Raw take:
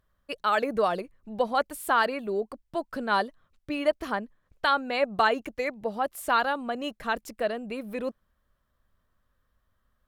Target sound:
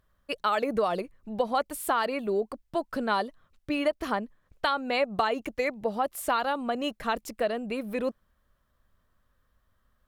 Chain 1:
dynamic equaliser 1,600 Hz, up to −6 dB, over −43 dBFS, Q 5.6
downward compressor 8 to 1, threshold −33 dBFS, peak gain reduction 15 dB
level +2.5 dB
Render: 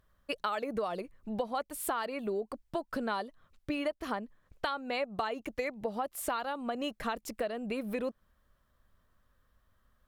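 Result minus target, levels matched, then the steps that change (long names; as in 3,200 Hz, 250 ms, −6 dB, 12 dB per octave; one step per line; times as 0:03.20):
downward compressor: peak gain reduction +8 dB
change: downward compressor 8 to 1, threshold −24 dBFS, peak gain reduction 7 dB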